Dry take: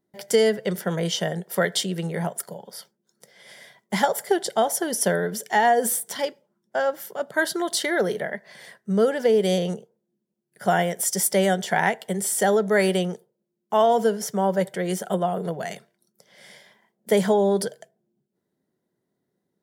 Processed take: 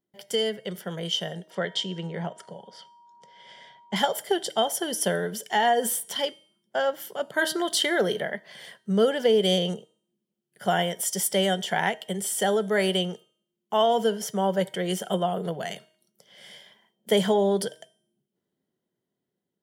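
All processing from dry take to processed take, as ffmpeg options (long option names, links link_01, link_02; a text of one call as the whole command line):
ffmpeg -i in.wav -filter_complex "[0:a]asettb=1/sr,asplit=3[link_01][link_02][link_03];[link_01]atrim=end=1.504[link_04];[link_02]atrim=start=1.5:end=3.96,asetpts=PTS-STARTPTS,afade=type=in:duration=0.004:curve=qsin,afade=type=out:start_time=2.456:duration=0.004:curve=qsin,highshelf=frequency=4000:gain=-6,aeval=exprs='val(0)+0.00398*sin(2*PI*950*n/s)':channel_layout=same,lowpass=frequency=7300:width=0.5412,lowpass=frequency=7300:width=1.3066[link_05];[link_03]atrim=start=3.956[link_06];[link_04][link_05]acrossfade=duration=0.004:curve1=hsin:curve2=qsin[link_07];[link_07][link_06]acrossfade=duration=0.004:curve1=qsin:curve2=hsin,equalizer=frequency=3100:width=7.4:gain=13,bandreject=frequency=313.9:width_type=h:width=4,bandreject=frequency=627.8:width_type=h:width=4,bandreject=frequency=941.7:width_type=h:width=4,bandreject=frequency=1255.6:width_type=h:width=4,bandreject=frequency=1569.5:width_type=h:width=4,bandreject=frequency=1883.4:width_type=h:width=4,bandreject=frequency=2197.3:width_type=h:width=4,bandreject=frequency=2511.2:width_type=h:width=4,bandreject=frequency=2825.1:width_type=h:width=4,bandreject=frequency=3139:width_type=h:width=4,bandreject=frequency=3452.9:width_type=h:width=4,bandreject=frequency=3766.8:width_type=h:width=4,bandreject=frequency=4080.7:width_type=h:width=4,bandreject=frequency=4394.6:width_type=h:width=4,bandreject=frequency=4708.5:width_type=h:width=4,bandreject=frequency=5022.4:width_type=h:width=4,bandreject=frequency=5336.3:width_type=h:width=4,bandreject=frequency=5650.2:width_type=h:width=4,bandreject=frequency=5964.1:width_type=h:width=4,bandreject=frequency=6278:width_type=h:width=4,bandreject=frequency=6591.9:width_type=h:width=4,bandreject=frequency=6905.8:width_type=h:width=4,bandreject=frequency=7219.7:width_type=h:width=4,bandreject=frequency=7533.6:width_type=h:width=4,bandreject=frequency=7847.5:width_type=h:width=4,bandreject=frequency=8161.4:width_type=h:width=4,bandreject=frequency=8475.3:width_type=h:width=4,bandreject=frequency=8789.2:width_type=h:width=4,bandreject=frequency=9103.1:width_type=h:width=4,bandreject=frequency=9417:width_type=h:width=4,bandreject=frequency=9730.9:width_type=h:width=4,bandreject=frequency=10044.8:width_type=h:width=4,bandreject=frequency=10358.7:width_type=h:width=4,bandreject=frequency=10672.6:width_type=h:width=4,bandreject=frequency=10986.5:width_type=h:width=4,bandreject=frequency=11300.4:width_type=h:width=4,dynaudnorm=framelen=560:gausssize=7:maxgain=11.5dB,volume=-8.5dB" out.wav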